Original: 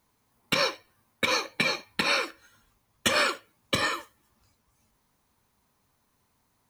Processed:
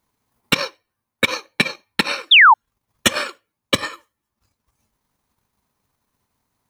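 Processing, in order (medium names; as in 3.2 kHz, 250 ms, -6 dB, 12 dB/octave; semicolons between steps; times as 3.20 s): transient shaper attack +12 dB, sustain -10 dB; painted sound fall, 2.31–2.54 s, 810–3800 Hz -6 dBFS; trim -2 dB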